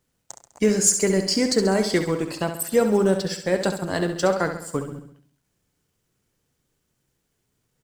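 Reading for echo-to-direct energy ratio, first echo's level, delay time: -7.0 dB, -8.5 dB, 67 ms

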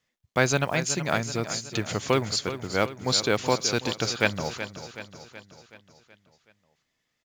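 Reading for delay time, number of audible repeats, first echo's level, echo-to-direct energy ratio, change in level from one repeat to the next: 0.375 s, 5, -11.5 dB, -10.0 dB, -5.5 dB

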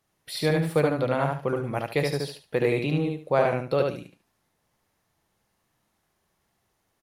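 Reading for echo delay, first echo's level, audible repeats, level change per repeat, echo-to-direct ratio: 73 ms, -3.0 dB, 3, -13.0 dB, -3.0 dB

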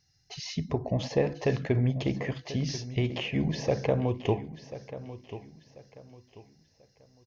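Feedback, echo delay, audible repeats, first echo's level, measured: 31%, 1.039 s, 3, -14.0 dB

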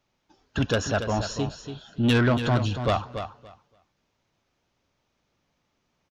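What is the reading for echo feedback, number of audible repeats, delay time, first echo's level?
17%, 2, 0.285 s, -9.0 dB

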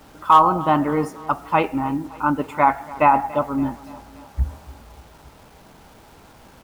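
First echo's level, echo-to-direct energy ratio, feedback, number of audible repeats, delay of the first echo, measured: -20.0 dB, -18.5 dB, 56%, 3, 0.285 s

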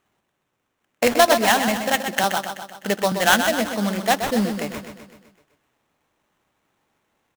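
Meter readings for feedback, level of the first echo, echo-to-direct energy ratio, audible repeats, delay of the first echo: 55%, -8.0 dB, -6.5 dB, 6, 0.127 s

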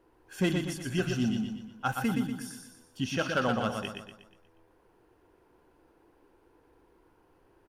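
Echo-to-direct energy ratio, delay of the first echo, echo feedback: -4.0 dB, 0.12 s, 45%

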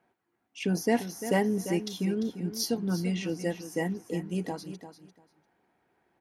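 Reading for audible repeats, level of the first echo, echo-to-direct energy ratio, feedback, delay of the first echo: 2, -11.5 dB, -11.5 dB, 17%, 0.346 s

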